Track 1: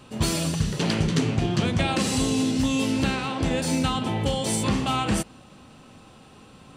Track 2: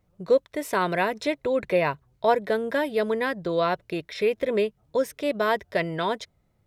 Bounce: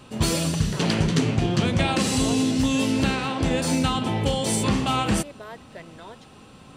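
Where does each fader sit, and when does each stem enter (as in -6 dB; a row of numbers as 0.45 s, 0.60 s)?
+1.5 dB, -16.5 dB; 0.00 s, 0.00 s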